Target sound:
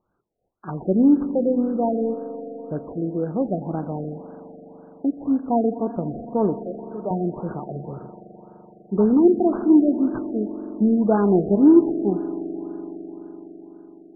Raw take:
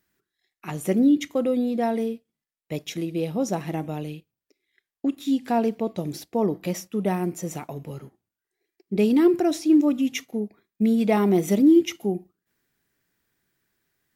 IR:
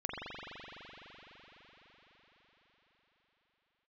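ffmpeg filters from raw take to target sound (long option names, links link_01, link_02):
-filter_complex "[0:a]asettb=1/sr,asplit=3[link_01][link_02][link_03];[link_01]atrim=end=6.574[link_04];[link_02]atrim=start=6.57:end=7.11,asetpts=PTS-STARTPTS,afade=type=in:duration=0.004:curve=qsin,afade=type=out:start_time=0.536:duration=0.004:curve=qsin,highpass=510,lowpass=2400[link_05];[link_03]atrim=start=7.106[link_06];[link_04][link_05]acrossfade=duration=0.004:curve1=hsin:curve2=qsin[link_07];[link_07][link_06]acrossfade=duration=0.004:curve1=qsin:curve2=hsin,acrusher=samples=10:mix=1:aa=0.000001:lfo=1:lforange=6:lforate=0.58,aeval=exprs='0.376*(cos(1*acos(clip(val(0)/0.376,-1,1)))-cos(1*PI/2))+0.0188*(cos(3*acos(clip(val(0)/0.376,-1,1)))-cos(3*PI/2))':channel_layout=same,asplit=2[link_08][link_09];[1:a]atrim=start_sample=2205[link_10];[link_09][link_10]afir=irnorm=-1:irlink=0,volume=-13dB[link_11];[link_08][link_11]amix=inputs=2:normalize=0,afftfilt=real='re*lt(b*sr/1024,740*pow(1700/740,0.5+0.5*sin(2*PI*1.9*pts/sr)))':imag='im*lt(b*sr/1024,740*pow(1700/740,0.5+0.5*sin(2*PI*1.9*pts/sr)))':win_size=1024:overlap=0.75,volume=2dB"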